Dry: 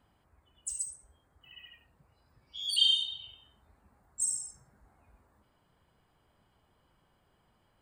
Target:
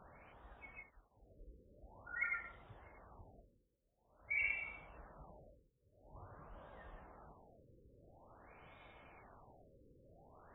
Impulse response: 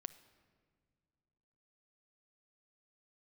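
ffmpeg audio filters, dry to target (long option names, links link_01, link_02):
-af "tiltshelf=frequency=910:gain=-5.5,asetrate=32667,aresample=44100,areverse,acompressor=threshold=-34dB:ratio=10,areverse,alimiter=level_in=13.5dB:limit=-24dB:level=0:latency=1:release=66,volume=-13.5dB,afftfilt=real='re*lt(b*sr/1024,540*pow(3900/540,0.5+0.5*sin(2*PI*0.48*pts/sr)))':imag='im*lt(b*sr/1024,540*pow(3900/540,0.5+0.5*sin(2*PI*0.48*pts/sr)))':win_size=1024:overlap=0.75,volume=11dB"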